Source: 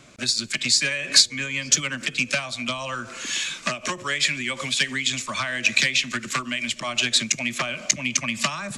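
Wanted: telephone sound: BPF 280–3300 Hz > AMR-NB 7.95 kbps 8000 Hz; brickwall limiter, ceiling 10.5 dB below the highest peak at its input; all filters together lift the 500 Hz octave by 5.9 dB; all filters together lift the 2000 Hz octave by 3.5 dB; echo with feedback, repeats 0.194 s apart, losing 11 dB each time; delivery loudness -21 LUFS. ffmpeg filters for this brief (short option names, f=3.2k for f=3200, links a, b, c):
-af "equalizer=f=500:t=o:g=7.5,equalizer=f=2k:t=o:g=5,alimiter=limit=-10.5dB:level=0:latency=1,highpass=280,lowpass=3.3k,aecho=1:1:194|388|582:0.282|0.0789|0.0221,volume=5dB" -ar 8000 -c:a libopencore_amrnb -b:a 7950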